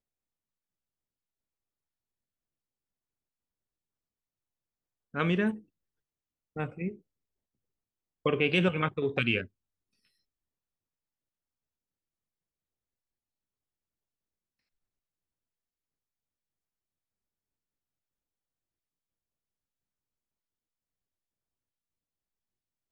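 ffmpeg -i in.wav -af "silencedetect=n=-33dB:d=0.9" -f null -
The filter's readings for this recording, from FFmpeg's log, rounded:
silence_start: 0.00
silence_end: 5.15 | silence_duration: 5.15
silence_start: 5.54
silence_end: 6.56 | silence_duration: 1.03
silence_start: 6.89
silence_end: 8.26 | silence_duration: 1.37
silence_start: 9.42
silence_end: 22.92 | silence_duration: 13.49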